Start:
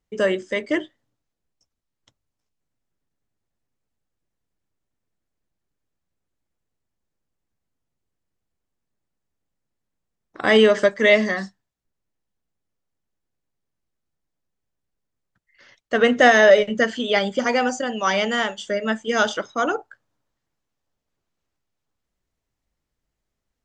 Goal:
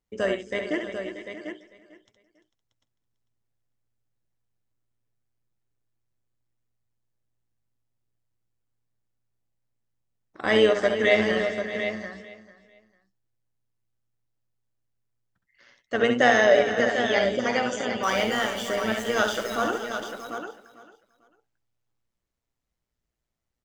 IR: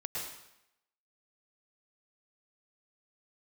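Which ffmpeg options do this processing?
-filter_complex "[0:a]asettb=1/sr,asplit=3[link_01][link_02][link_03];[link_01]atrim=end=18.034[link_04];[link_02]atrim=start=18.03:end=19.64,asetpts=PTS-STARTPTS,afade=type=in:duration=0.004:curve=qsin,afade=type=out:start_time=1.606:duration=0.004:curve=qsin,aeval=exprs='val(0)+0.5*0.0316*sgn(val(0))':channel_layout=same[link_05];[link_03]atrim=start=19.636[link_06];[link_04][link_05]acrossfade=duration=0.004:curve1=hsin:curve2=qsin[link_07];[link_07][link_06]acrossfade=duration=0.004:curve1=qsin:curve2=hsin,asplit=2[link_08][link_09];[link_09]aecho=0:1:66|78|344|633|745:0.447|0.133|0.266|0.2|0.376[link_10];[link_08][link_10]amix=inputs=2:normalize=0,tremolo=f=120:d=0.519,asplit=2[link_11][link_12];[link_12]aecho=0:1:447|894:0.15|0.0374[link_13];[link_11][link_13]amix=inputs=2:normalize=0,volume=-3.5dB"

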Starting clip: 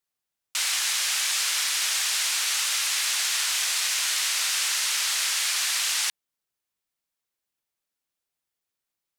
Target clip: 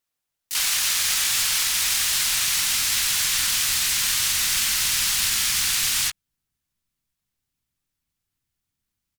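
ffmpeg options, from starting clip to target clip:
ffmpeg -i in.wav -filter_complex "[0:a]asplit=4[link_01][link_02][link_03][link_04];[link_02]asetrate=33038,aresample=44100,atempo=1.33484,volume=-8dB[link_05];[link_03]asetrate=66075,aresample=44100,atempo=0.66742,volume=-2dB[link_06];[link_04]asetrate=88200,aresample=44100,atempo=0.5,volume=-3dB[link_07];[link_01][link_05][link_06][link_07]amix=inputs=4:normalize=0,acrusher=bits=3:mode=log:mix=0:aa=0.000001,asubboost=boost=9:cutoff=170" out.wav

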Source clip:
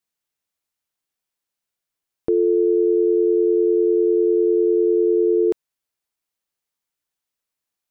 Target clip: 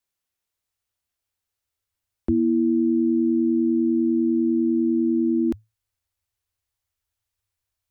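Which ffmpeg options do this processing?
ffmpeg -i in.wav -af "asubboost=boost=10.5:cutoff=90,afreqshift=-110" out.wav

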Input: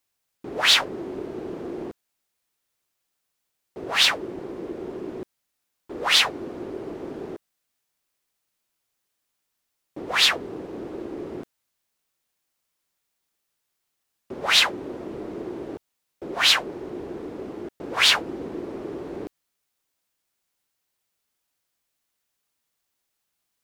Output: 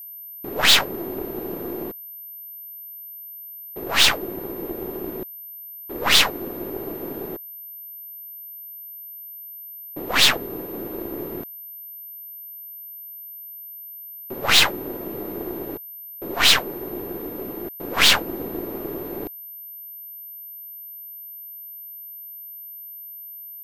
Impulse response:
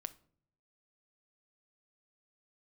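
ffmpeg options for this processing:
-af "aeval=exprs='0.596*(cos(1*acos(clip(val(0)/0.596,-1,1)))-cos(1*PI/2))+0.075*(cos(8*acos(clip(val(0)/0.596,-1,1)))-cos(8*PI/2))':channel_layout=same,aeval=exprs='val(0)+0.0126*sin(2*PI*13000*n/s)':channel_layout=same,volume=2dB"

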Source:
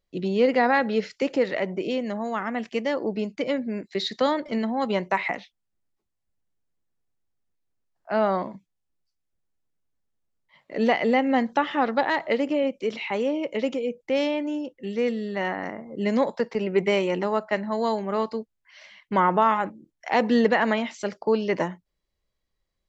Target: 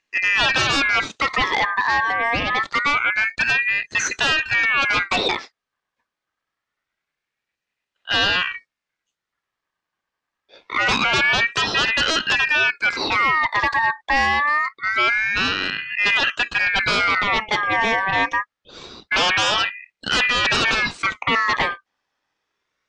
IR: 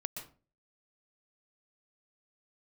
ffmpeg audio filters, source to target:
-af "aeval=exprs='0.447*sin(PI/2*5.01*val(0)/0.447)':channel_layout=same,highpass=140,lowpass=4200,aeval=exprs='val(0)*sin(2*PI*1800*n/s+1800*0.25/0.25*sin(2*PI*0.25*n/s))':channel_layout=same,volume=-4.5dB"

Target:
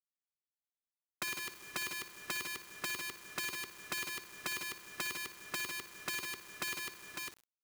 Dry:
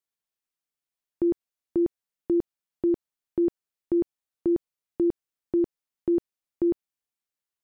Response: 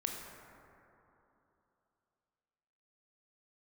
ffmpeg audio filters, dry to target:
-filter_complex "[0:a]acrossover=split=250[link_01][link_02];[link_02]asoftclip=type=tanh:threshold=-30dB[link_03];[link_01][link_03]amix=inputs=2:normalize=0,acrossover=split=130|390|950[link_04][link_05][link_06][link_07];[link_04]acompressor=threshold=-57dB:ratio=4[link_08];[link_05]acompressor=threshold=-40dB:ratio=4[link_09];[link_06]acompressor=threshold=-42dB:ratio=4[link_10];[link_07]acompressor=threshold=-59dB:ratio=4[link_11];[link_08][link_09][link_10][link_11]amix=inputs=4:normalize=0,firequalizer=gain_entry='entry(110,0);entry(180,-13);entry(370,15);entry(790,-16);entry(1200,12);entry(2100,11);entry(3000,-18)':delay=0.05:min_phase=1,aeval=exprs='(mod(22.4*val(0)+1,2)-1)/22.4':channel_layout=same,aecho=1:1:52|60|150|551:0.188|0.376|0.531|0.211,asplit=2[link_12][link_13];[1:a]atrim=start_sample=2205,adelay=58[link_14];[link_13][link_14]afir=irnorm=-1:irlink=0,volume=-16dB[link_15];[link_12][link_15]amix=inputs=2:normalize=0,acompressor=threshold=-48dB:ratio=4,highpass=63,equalizer=frequency=550:width=0.77:gain=-6.5,bandreject=frequency=680:width=12,acrusher=bits=9:mix=0:aa=0.000001,volume=9.5dB"

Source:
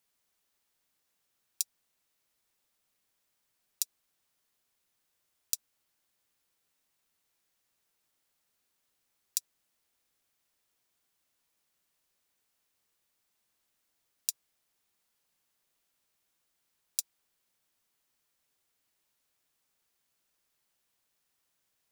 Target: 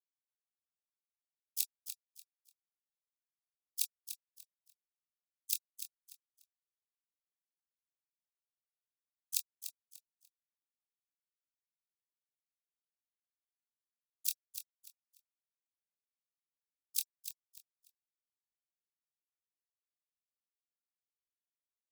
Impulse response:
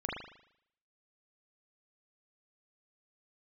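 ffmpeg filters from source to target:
-filter_complex "[0:a]afftfilt=real='re*gte(hypot(re,im),0.00447)':imag='im*gte(hypot(re,im),0.00447)':win_size=1024:overlap=0.75,bandreject=frequency=470:width=12,afftfilt=real='re*lt(hypot(re,im),0.0355)':imag='im*lt(hypot(re,im),0.0355)':win_size=1024:overlap=0.75,equalizer=frequency=210:width=0.59:gain=14.5,bandreject=frequency=50:width_type=h:width=6,bandreject=frequency=100:width_type=h:width=6,bandreject=frequency=150:width_type=h:width=6,acompressor=threshold=-43dB:ratio=12,asplit=3[link_01][link_02][link_03];[link_02]asetrate=55563,aresample=44100,atempo=0.793701,volume=-5dB[link_04];[link_03]asetrate=58866,aresample=44100,atempo=0.749154,volume=-10dB[link_05];[link_01][link_04][link_05]amix=inputs=3:normalize=0,asplit=2[link_06][link_07];[link_07]adelay=24,volume=-7.5dB[link_08];[link_06][link_08]amix=inputs=2:normalize=0,aecho=1:1:294|588|882:0.316|0.0791|0.0198,volume=12.5dB"

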